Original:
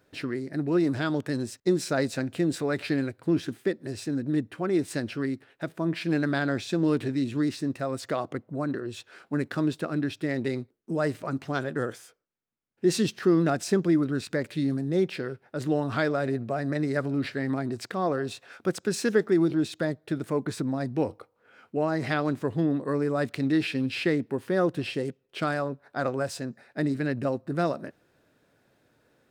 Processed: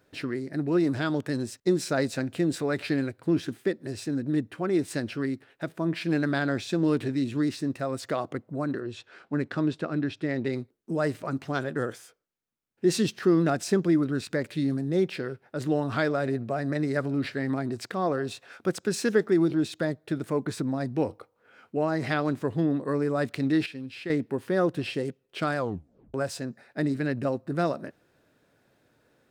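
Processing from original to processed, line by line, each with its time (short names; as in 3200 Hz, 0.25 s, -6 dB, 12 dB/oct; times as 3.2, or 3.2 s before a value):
8.83–10.53 air absorption 77 m
23.66–24.1 gain -10 dB
25.57 tape stop 0.57 s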